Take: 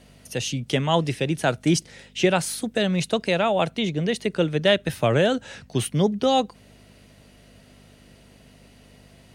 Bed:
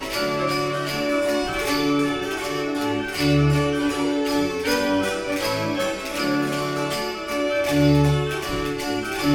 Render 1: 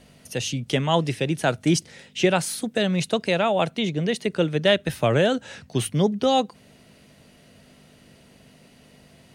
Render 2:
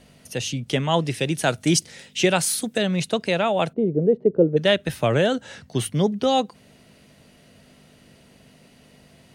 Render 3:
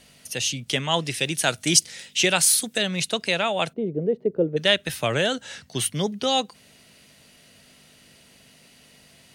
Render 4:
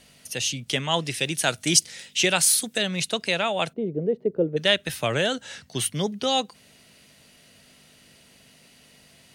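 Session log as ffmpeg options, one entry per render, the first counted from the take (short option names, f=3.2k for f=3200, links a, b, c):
-af "bandreject=f=50:t=h:w=4,bandreject=f=100:t=h:w=4"
-filter_complex "[0:a]asettb=1/sr,asplit=3[a][b][c];[a]atrim=end=1.144[d];[b]atrim=start=1.14:end=2.78,asetpts=PTS-STARTPTS,afade=t=in:d=0.004:c=qsin,afade=t=out:st=1.636:d=0.004:c=qsin,highshelf=f=3.5k:g=7.5[e];[c]atrim=start=2.776[f];[d][e]acrossfade=d=0.004:c1=hsin:c2=qsin[g];[g][f]acrossfade=d=0.004:c1=qsin:c2=hsin,asplit=3[h][i][j];[h]afade=t=out:st=3.72:d=0.02[k];[i]lowpass=f=450:t=q:w=2.8,afade=t=in:st=3.72:d=0.02,afade=t=out:st=4.56:d=0.02[l];[j]afade=t=in:st=4.56:d=0.02[m];[k][l][m]amix=inputs=3:normalize=0,asettb=1/sr,asplit=3[n][o][p];[n]atrim=end=5.234[q];[o]atrim=start=5.23:end=5.93,asetpts=PTS-STARTPTS,afade=t=in:d=0.004:c=qsin,afade=t=out:st=0.696:d=0.004:c=qsin,bandreject=f=2.5k:w=12[r];[p]atrim=start=5.926[s];[q][r]acrossfade=d=0.004:c1=hsin:c2=qsin[t];[t][s]acrossfade=d=0.004:c1=qsin:c2=hsin"
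-af "tiltshelf=f=1.4k:g=-6"
-af "volume=-1dB"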